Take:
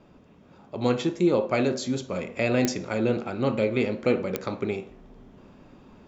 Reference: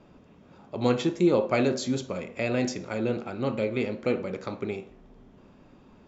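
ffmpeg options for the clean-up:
-af "adeclick=t=4,asetnsamples=n=441:p=0,asendcmd='2.12 volume volume -3.5dB',volume=1"

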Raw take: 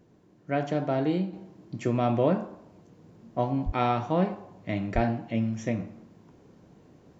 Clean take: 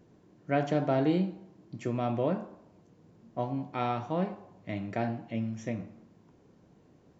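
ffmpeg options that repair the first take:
-filter_complex "[0:a]asplit=3[s0][s1][s2];[s0]afade=t=out:st=3.65:d=0.02[s3];[s1]highpass=f=140:w=0.5412,highpass=f=140:w=1.3066,afade=t=in:st=3.65:d=0.02,afade=t=out:st=3.77:d=0.02[s4];[s2]afade=t=in:st=3.77:d=0.02[s5];[s3][s4][s5]amix=inputs=3:normalize=0,asplit=3[s6][s7][s8];[s6]afade=t=out:st=4.94:d=0.02[s9];[s7]highpass=f=140:w=0.5412,highpass=f=140:w=1.3066,afade=t=in:st=4.94:d=0.02,afade=t=out:st=5.06:d=0.02[s10];[s8]afade=t=in:st=5.06:d=0.02[s11];[s9][s10][s11]amix=inputs=3:normalize=0,asetnsamples=n=441:p=0,asendcmd='1.33 volume volume -5.5dB',volume=1"

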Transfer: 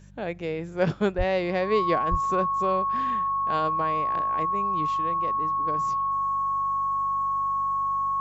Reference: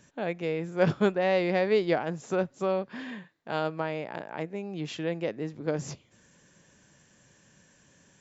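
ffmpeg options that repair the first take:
-filter_complex "[0:a]bandreject=f=48.8:t=h:w=4,bandreject=f=97.6:t=h:w=4,bandreject=f=146.4:t=h:w=4,bandreject=f=195.2:t=h:w=4,bandreject=f=1100:w=30,asplit=3[s0][s1][s2];[s0]afade=t=out:st=1.17:d=0.02[s3];[s1]highpass=f=140:w=0.5412,highpass=f=140:w=1.3066,afade=t=in:st=1.17:d=0.02,afade=t=out:st=1.29:d=0.02[s4];[s2]afade=t=in:st=1.29:d=0.02[s5];[s3][s4][s5]amix=inputs=3:normalize=0,asplit=3[s6][s7][s8];[s6]afade=t=out:st=2.1:d=0.02[s9];[s7]highpass=f=140:w=0.5412,highpass=f=140:w=1.3066,afade=t=in:st=2.1:d=0.02,afade=t=out:st=2.22:d=0.02[s10];[s8]afade=t=in:st=2.22:d=0.02[s11];[s9][s10][s11]amix=inputs=3:normalize=0,asetnsamples=n=441:p=0,asendcmd='4.87 volume volume 6dB',volume=1"

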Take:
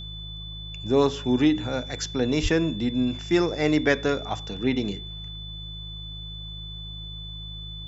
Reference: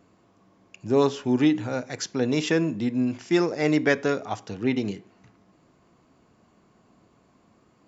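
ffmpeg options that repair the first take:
-filter_complex "[0:a]bandreject=f=52.7:t=h:w=4,bandreject=f=105.4:t=h:w=4,bandreject=f=158.1:t=h:w=4,bandreject=f=3500:w=30,asplit=3[s0][s1][s2];[s0]afade=t=out:st=2.42:d=0.02[s3];[s1]highpass=f=140:w=0.5412,highpass=f=140:w=1.3066,afade=t=in:st=2.42:d=0.02,afade=t=out:st=2.54:d=0.02[s4];[s2]afade=t=in:st=2.54:d=0.02[s5];[s3][s4][s5]amix=inputs=3:normalize=0"

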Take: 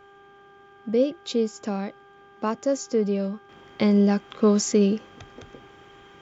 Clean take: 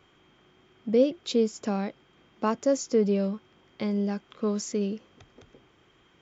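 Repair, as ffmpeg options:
-af "bandreject=f=398.8:t=h:w=4,bandreject=f=797.6:t=h:w=4,bandreject=f=1196.4:t=h:w=4,bandreject=f=1595.2:t=h:w=4,asetnsamples=n=441:p=0,asendcmd='3.49 volume volume -9dB',volume=1"

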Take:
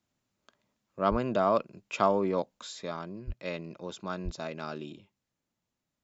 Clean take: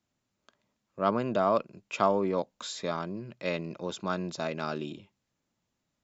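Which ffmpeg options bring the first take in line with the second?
-filter_complex "[0:a]asplit=3[s0][s1][s2];[s0]afade=t=out:st=1.1:d=0.02[s3];[s1]highpass=f=140:w=0.5412,highpass=f=140:w=1.3066,afade=t=in:st=1.1:d=0.02,afade=t=out:st=1.22:d=0.02[s4];[s2]afade=t=in:st=1.22:d=0.02[s5];[s3][s4][s5]amix=inputs=3:normalize=0,asplit=3[s6][s7][s8];[s6]afade=t=out:st=3.26:d=0.02[s9];[s7]highpass=f=140:w=0.5412,highpass=f=140:w=1.3066,afade=t=in:st=3.26:d=0.02,afade=t=out:st=3.38:d=0.02[s10];[s8]afade=t=in:st=3.38:d=0.02[s11];[s9][s10][s11]amix=inputs=3:normalize=0,asplit=3[s12][s13][s14];[s12]afade=t=out:st=4.24:d=0.02[s15];[s13]highpass=f=140:w=0.5412,highpass=f=140:w=1.3066,afade=t=in:st=4.24:d=0.02,afade=t=out:st=4.36:d=0.02[s16];[s14]afade=t=in:st=4.36:d=0.02[s17];[s15][s16][s17]amix=inputs=3:normalize=0,asetnsamples=n=441:p=0,asendcmd='2.59 volume volume 4.5dB',volume=1"

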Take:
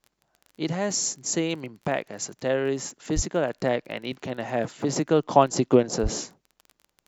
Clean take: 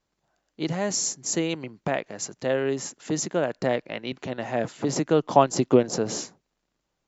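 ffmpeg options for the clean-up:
-filter_complex "[0:a]adeclick=t=4,asplit=3[s0][s1][s2];[s0]afade=t=out:st=3.15:d=0.02[s3];[s1]highpass=f=140:w=0.5412,highpass=f=140:w=1.3066,afade=t=in:st=3.15:d=0.02,afade=t=out:st=3.27:d=0.02[s4];[s2]afade=t=in:st=3.27:d=0.02[s5];[s3][s4][s5]amix=inputs=3:normalize=0,asplit=3[s6][s7][s8];[s6]afade=t=out:st=6.02:d=0.02[s9];[s7]highpass=f=140:w=0.5412,highpass=f=140:w=1.3066,afade=t=in:st=6.02:d=0.02,afade=t=out:st=6.14:d=0.02[s10];[s8]afade=t=in:st=6.14:d=0.02[s11];[s9][s10][s11]amix=inputs=3:normalize=0"

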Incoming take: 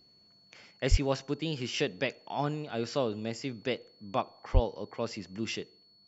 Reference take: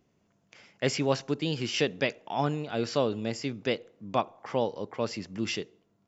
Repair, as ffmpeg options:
-filter_complex "[0:a]bandreject=f=4400:w=30,asplit=3[s0][s1][s2];[s0]afade=t=out:st=0.9:d=0.02[s3];[s1]highpass=f=140:w=0.5412,highpass=f=140:w=1.3066,afade=t=in:st=0.9:d=0.02,afade=t=out:st=1.02:d=0.02[s4];[s2]afade=t=in:st=1.02:d=0.02[s5];[s3][s4][s5]amix=inputs=3:normalize=0,asplit=3[s6][s7][s8];[s6]afade=t=out:st=4.53:d=0.02[s9];[s7]highpass=f=140:w=0.5412,highpass=f=140:w=1.3066,afade=t=in:st=4.53:d=0.02,afade=t=out:st=4.65:d=0.02[s10];[s8]afade=t=in:st=4.65:d=0.02[s11];[s9][s10][s11]amix=inputs=3:normalize=0,asetnsamples=n=441:p=0,asendcmd='0.71 volume volume 3.5dB',volume=1"

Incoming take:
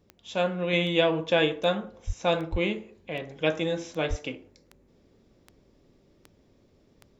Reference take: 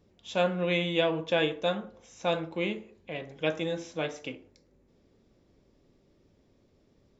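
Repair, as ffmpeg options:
-filter_complex "[0:a]adeclick=t=4,asplit=3[s0][s1][s2];[s0]afade=t=out:st=2.06:d=0.02[s3];[s1]highpass=f=140:w=0.5412,highpass=f=140:w=1.3066,afade=t=in:st=2.06:d=0.02,afade=t=out:st=2.18:d=0.02[s4];[s2]afade=t=in:st=2.18:d=0.02[s5];[s3][s4][s5]amix=inputs=3:normalize=0,asplit=3[s6][s7][s8];[s6]afade=t=out:st=2.51:d=0.02[s9];[s7]highpass=f=140:w=0.5412,highpass=f=140:w=1.3066,afade=t=in:st=2.51:d=0.02,afade=t=out:st=2.63:d=0.02[s10];[s8]afade=t=in:st=2.63:d=0.02[s11];[s9][s10][s11]amix=inputs=3:normalize=0,asplit=3[s12][s13][s14];[s12]afade=t=out:st=4.09:d=0.02[s15];[s13]highpass=f=140:w=0.5412,highpass=f=140:w=1.3066,afade=t=in:st=4.09:d=0.02,afade=t=out:st=4.21:d=0.02[s16];[s14]afade=t=in:st=4.21:d=0.02[s17];[s15][s16][s17]amix=inputs=3:normalize=0,asetnsamples=n=441:p=0,asendcmd='0.73 volume volume -3.5dB',volume=1"

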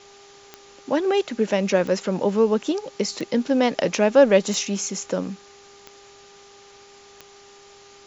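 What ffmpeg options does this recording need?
-af "adeclick=t=4,bandreject=f=401:t=h:w=4,bandreject=f=802:t=h:w=4,bandreject=f=1203:t=h:w=4,afwtdn=0.0045"

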